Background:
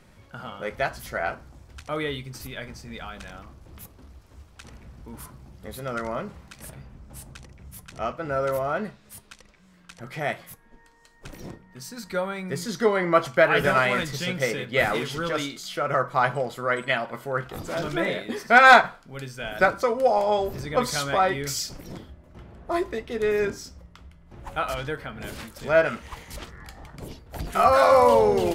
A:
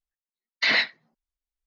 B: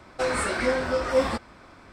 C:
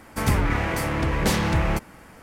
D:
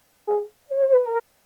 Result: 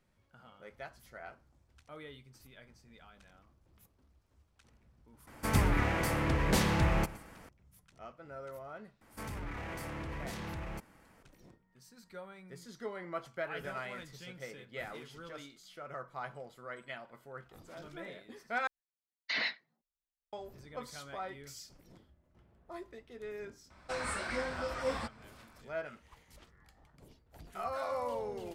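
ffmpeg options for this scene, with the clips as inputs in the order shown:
ffmpeg -i bed.wav -i cue0.wav -i cue1.wav -i cue2.wav -filter_complex "[3:a]asplit=2[link_01][link_02];[0:a]volume=-20dB[link_03];[link_01]aecho=1:1:118:0.126[link_04];[link_02]alimiter=limit=-19dB:level=0:latency=1:release=13[link_05];[2:a]equalizer=frequency=370:width_type=o:width=0.97:gain=-7[link_06];[link_03]asplit=2[link_07][link_08];[link_07]atrim=end=18.674[link_09];[1:a]atrim=end=1.66,asetpts=PTS-STARTPTS,volume=-12.5dB[link_10];[link_08]atrim=start=20.326[link_11];[link_04]atrim=end=2.22,asetpts=PTS-STARTPTS,volume=-6.5dB,afade=type=in:duration=0.004:curve=hsin,afade=type=out:start_time=2.216:duration=0.004:curve=hsin,adelay=5270[link_12];[link_05]atrim=end=2.22,asetpts=PTS-STARTPTS,volume=-15dB,afade=type=in:duration=0.004:curve=hsin,afade=type=out:start_time=2.216:duration=0.004:curve=hsin,adelay=9010[link_13];[link_06]atrim=end=1.92,asetpts=PTS-STARTPTS,volume=-9.5dB,afade=type=in:duration=0.004:curve=hsin,afade=type=out:start_time=1.916:duration=0.004:curve=hsin,adelay=23700[link_14];[link_09][link_10]acrossfade=duration=0.004:curve1=hsin:curve2=hsin[link_15];[link_15][link_11]acrossfade=duration=0.004:curve1=hsin:curve2=hsin[link_16];[link_16][link_12][link_13][link_14]amix=inputs=4:normalize=0" out.wav

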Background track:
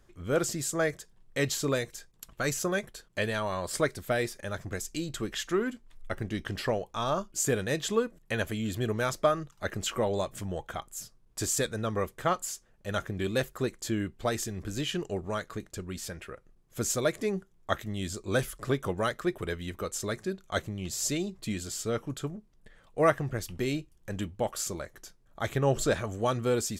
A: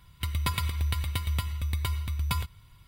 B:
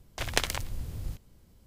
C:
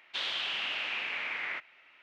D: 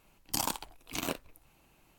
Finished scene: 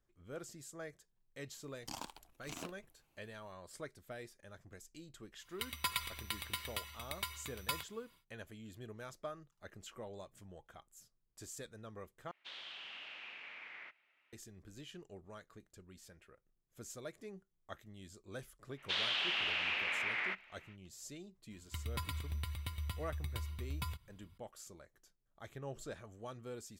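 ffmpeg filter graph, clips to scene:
ffmpeg -i bed.wav -i cue0.wav -i cue1.wav -i cue2.wav -i cue3.wav -filter_complex "[1:a]asplit=2[link_01][link_02];[3:a]asplit=2[link_03][link_04];[0:a]volume=-19.5dB[link_05];[4:a]acrossover=split=7300[link_06][link_07];[link_07]acompressor=threshold=-46dB:ratio=4:attack=1:release=60[link_08];[link_06][link_08]amix=inputs=2:normalize=0[link_09];[link_01]highpass=frequency=1000:poles=1[link_10];[link_05]asplit=2[link_11][link_12];[link_11]atrim=end=12.314[link_13];[link_03]atrim=end=2.02,asetpts=PTS-STARTPTS,volume=-15.5dB[link_14];[link_12]atrim=start=14.326[link_15];[link_09]atrim=end=1.98,asetpts=PTS-STARTPTS,volume=-12dB,afade=type=in:duration=0.004:curve=hsin,afade=type=out:start_time=1.976:duration=0.004:curve=hsin,adelay=1540[link_16];[link_10]atrim=end=2.87,asetpts=PTS-STARTPTS,volume=-3.5dB,afade=type=in:duration=0.1,afade=type=out:start_time=2.77:duration=0.1,adelay=5380[link_17];[link_04]atrim=end=2.02,asetpts=PTS-STARTPTS,volume=-1.5dB,afade=type=in:duration=0.05,afade=type=out:start_time=1.97:duration=0.05,adelay=18750[link_18];[link_02]atrim=end=2.87,asetpts=PTS-STARTPTS,volume=-12dB,afade=type=in:duration=0.004:curve=hsin,afade=type=out:start_time=2.866:duration=0.004:curve=hsin,adelay=21510[link_19];[link_13][link_14]acrossfade=duration=0.004:curve1=hsin:curve2=hsin[link_20];[link_20][link_15]acrossfade=duration=0.004:curve1=hsin:curve2=hsin[link_21];[link_21][link_16][link_17][link_18][link_19]amix=inputs=5:normalize=0" out.wav

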